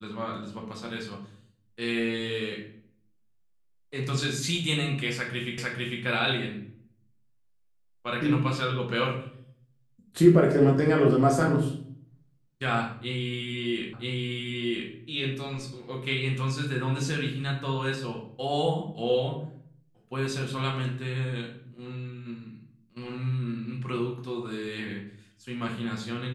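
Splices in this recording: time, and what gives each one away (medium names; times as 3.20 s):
5.58 s: repeat of the last 0.45 s
13.93 s: repeat of the last 0.98 s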